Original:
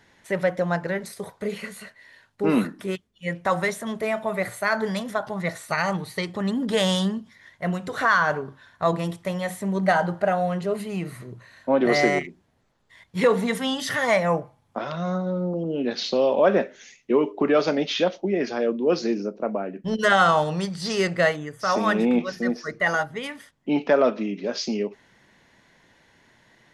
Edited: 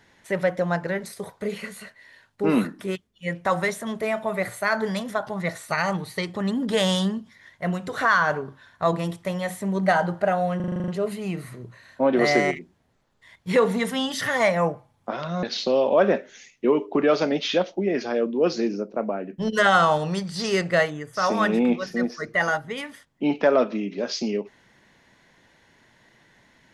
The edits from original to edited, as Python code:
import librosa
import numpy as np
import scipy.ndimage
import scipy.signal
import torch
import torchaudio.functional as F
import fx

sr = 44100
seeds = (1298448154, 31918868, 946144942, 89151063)

y = fx.edit(x, sr, fx.stutter(start_s=10.56, slice_s=0.04, count=9),
    fx.cut(start_s=15.11, length_s=0.78), tone=tone)